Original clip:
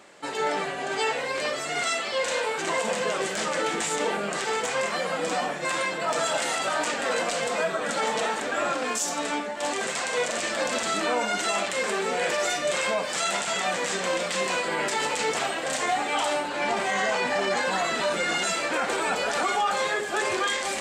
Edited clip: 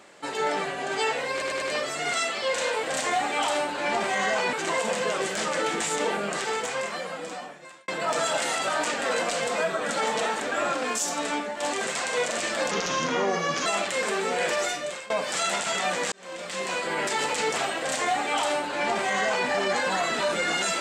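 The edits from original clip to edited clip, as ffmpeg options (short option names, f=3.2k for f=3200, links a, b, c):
-filter_complex "[0:a]asplit=11[a][b][c][d][e][f][g][h][i][j][k];[a]atrim=end=1.422[l];[b]atrim=start=1.318:end=1.422[m];[c]atrim=start=1.318:end=1.422[n];[d]atrim=start=1.318:end=2.532[o];[e]atrim=start=15.588:end=17.292[p];[f]atrim=start=2.528:end=5.88,asetpts=PTS-STARTPTS,afade=t=out:st=1.792:d=1.56[q];[g]atrim=start=5.88:end=10.714,asetpts=PTS-STARTPTS,afade=t=in:d=0.004:c=hsin[r];[h]atrim=start=10.71:end=11.47,asetpts=PTS-STARTPTS,asetrate=35280,aresample=44100[s];[i]atrim=start=11.466:end=12.91,asetpts=PTS-STARTPTS,afade=t=out:st=0.914:d=0.53:silence=0.0944061[t];[j]atrim=start=12.91:end=13.93,asetpts=PTS-STARTPTS,afade=t=in:d=0.004:c=hsin:silence=0.0944061,afade=t=out:st=1.016:d=0.004:c=hsin[u];[k]atrim=start=13.93,asetpts=PTS-STARTPTS,afade=t=in:d=1.15:c=qsin[v];[l][m]acrossfade=d=0.004:c1=hsin:c2=hsin[w];[w][n]acrossfade=d=0.004:c1=hsin:c2=hsin[x];[x][o]acrossfade=d=0.004:c1=hsin:c2=hsin[y];[y][p]acrossfade=d=0.004:c1=hsin:c2=hsin[z];[q][r]concat=n=2:v=0:a=1[aa];[z][aa]acrossfade=d=0.004:c1=hsin:c2=hsin[ab];[ab][s]acrossfade=d=0.004:c1=hsin:c2=hsin[ac];[t][u][v]concat=n=3:v=0:a=1[ad];[ac][ad]acrossfade=d=0.004:c1=hsin:c2=hsin"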